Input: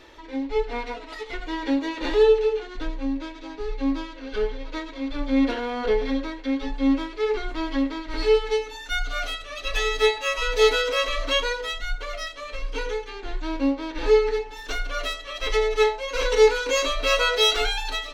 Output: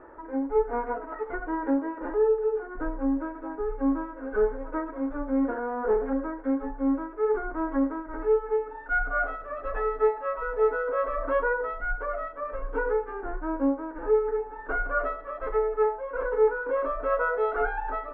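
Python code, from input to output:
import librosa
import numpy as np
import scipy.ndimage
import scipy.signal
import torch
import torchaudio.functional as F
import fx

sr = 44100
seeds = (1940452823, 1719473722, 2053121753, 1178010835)

y = fx.doppler_dist(x, sr, depth_ms=0.24, at=(5.69, 6.13))
y = scipy.signal.sosfilt(scipy.signal.ellip(4, 1.0, 80, 1500.0, 'lowpass', fs=sr, output='sos'), y)
y = fx.rider(y, sr, range_db=5, speed_s=0.5)
y = fx.low_shelf(y, sr, hz=200.0, db=-8.5)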